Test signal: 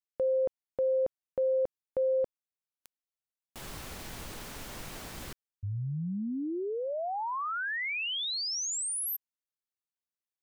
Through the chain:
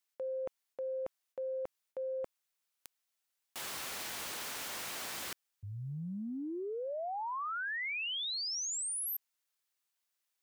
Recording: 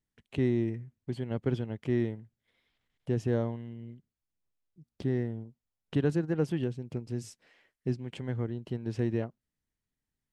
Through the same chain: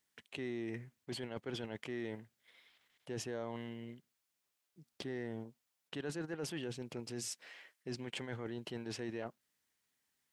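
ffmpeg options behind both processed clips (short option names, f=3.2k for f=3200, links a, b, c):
-af "highpass=f=980:p=1,areverse,acompressor=threshold=-48dB:ratio=6:attack=3.4:release=64:knee=1:detection=rms,areverse,volume=10.5dB"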